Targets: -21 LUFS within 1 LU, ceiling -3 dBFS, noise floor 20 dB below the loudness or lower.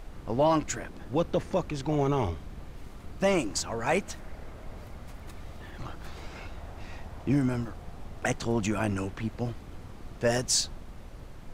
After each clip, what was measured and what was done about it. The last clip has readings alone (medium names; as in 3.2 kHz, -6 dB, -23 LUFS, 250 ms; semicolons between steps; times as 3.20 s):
noise floor -45 dBFS; noise floor target -50 dBFS; loudness -29.5 LUFS; peak level -14.5 dBFS; loudness target -21.0 LUFS
-> noise print and reduce 6 dB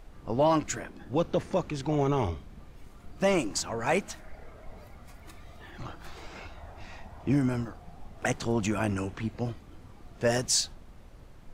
noise floor -51 dBFS; loudness -29.5 LUFS; peak level -14.5 dBFS; loudness target -21.0 LUFS
-> trim +8.5 dB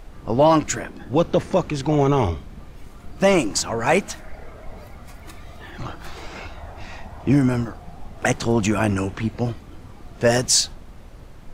loudness -21.0 LUFS; peak level -6.0 dBFS; noise floor -42 dBFS